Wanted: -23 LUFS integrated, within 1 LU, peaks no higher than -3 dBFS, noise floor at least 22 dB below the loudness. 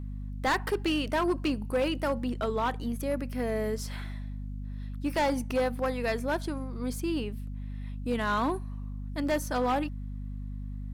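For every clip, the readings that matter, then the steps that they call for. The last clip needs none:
clipped samples 1.8%; clipping level -22.0 dBFS; hum 50 Hz; highest harmonic 250 Hz; hum level -34 dBFS; loudness -31.5 LUFS; peak level -22.0 dBFS; loudness target -23.0 LUFS
-> clip repair -22 dBFS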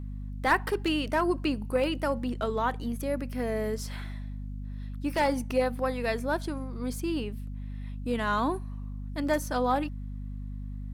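clipped samples 0.0%; hum 50 Hz; highest harmonic 250 Hz; hum level -34 dBFS
-> de-hum 50 Hz, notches 5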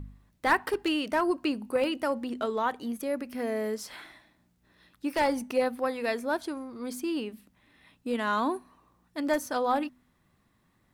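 hum not found; loudness -30.0 LUFS; peak level -12.0 dBFS; loudness target -23.0 LUFS
-> trim +7 dB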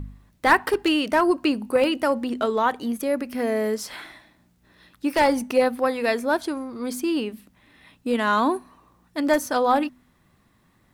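loudness -23.0 LUFS; peak level -5.0 dBFS; noise floor -63 dBFS

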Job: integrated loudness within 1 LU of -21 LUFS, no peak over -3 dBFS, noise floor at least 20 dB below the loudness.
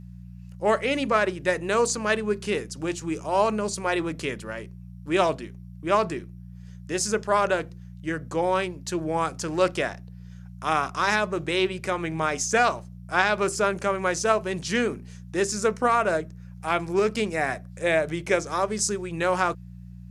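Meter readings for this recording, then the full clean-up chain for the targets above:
hum 60 Hz; highest harmonic 180 Hz; hum level -39 dBFS; loudness -25.5 LUFS; peak level -5.0 dBFS; loudness target -21.0 LUFS
-> de-hum 60 Hz, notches 3; trim +4.5 dB; peak limiter -3 dBFS

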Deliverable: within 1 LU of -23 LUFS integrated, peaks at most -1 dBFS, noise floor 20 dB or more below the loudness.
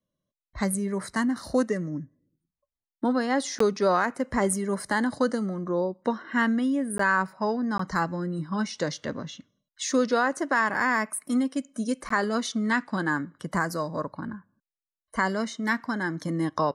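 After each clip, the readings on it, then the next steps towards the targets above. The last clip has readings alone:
dropouts 4; longest dropout 14 ms; loudness -27.0 LUFS; peak level -10.0 dBFS; loudness target -23.0 LUFS
-> interpolate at 3.59/6.98/7.78/12.09 s, 14 ms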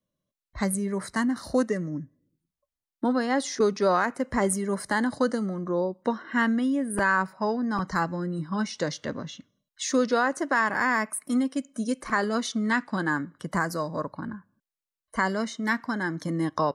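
dropouts 0; loudness -27.0 LUFS; peak level -10.0 dBFS; loudness target -23.0 LUFS
-> trim +4 dB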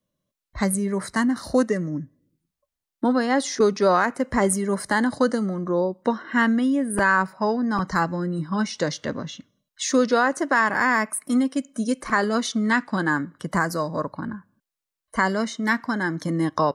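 loudness -23.0 LUFS; peak level -6.0 dBFS; noise floor -87 dBFS

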